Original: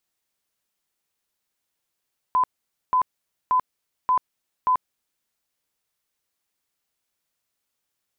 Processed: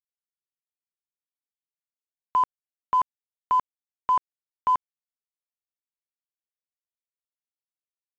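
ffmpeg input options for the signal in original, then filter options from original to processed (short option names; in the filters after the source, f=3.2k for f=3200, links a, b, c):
-f lavfi -i "aevalsrc='0.158*sin(2*PI*1010*mod(t,0.58))*lt(mod(t,0.58),88/1010)':d=2.9:s=44100"
-af "aresample=8000,aeval=exprs='sgn(val(0))*max(abs(val(0))-0.00398,0)':c=same,aresample=44100" -ar 16000 -c:a pcm_mulaw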